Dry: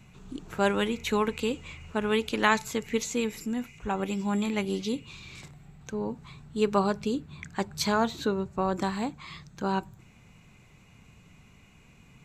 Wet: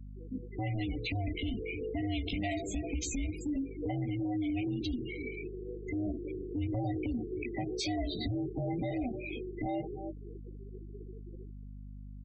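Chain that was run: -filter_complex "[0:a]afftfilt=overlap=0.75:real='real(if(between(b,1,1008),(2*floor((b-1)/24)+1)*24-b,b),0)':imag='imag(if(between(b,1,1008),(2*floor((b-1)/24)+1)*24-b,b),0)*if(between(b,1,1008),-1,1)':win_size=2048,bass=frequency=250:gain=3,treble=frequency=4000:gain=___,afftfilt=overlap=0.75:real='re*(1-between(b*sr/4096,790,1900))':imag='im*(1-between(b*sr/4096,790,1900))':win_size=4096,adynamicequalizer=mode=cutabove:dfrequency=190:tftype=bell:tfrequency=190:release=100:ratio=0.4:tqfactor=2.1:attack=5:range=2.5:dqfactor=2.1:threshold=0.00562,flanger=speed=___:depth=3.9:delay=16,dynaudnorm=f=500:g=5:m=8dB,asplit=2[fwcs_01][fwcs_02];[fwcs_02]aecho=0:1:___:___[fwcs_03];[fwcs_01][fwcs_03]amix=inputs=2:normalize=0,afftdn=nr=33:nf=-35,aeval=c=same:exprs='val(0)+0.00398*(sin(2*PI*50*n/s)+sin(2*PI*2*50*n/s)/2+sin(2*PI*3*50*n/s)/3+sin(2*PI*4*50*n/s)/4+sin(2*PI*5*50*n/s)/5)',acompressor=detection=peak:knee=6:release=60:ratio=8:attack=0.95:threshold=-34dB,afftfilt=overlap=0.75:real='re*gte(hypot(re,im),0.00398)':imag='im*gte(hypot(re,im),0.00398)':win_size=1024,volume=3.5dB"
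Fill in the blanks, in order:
-5, 0.98, 307, 0.0891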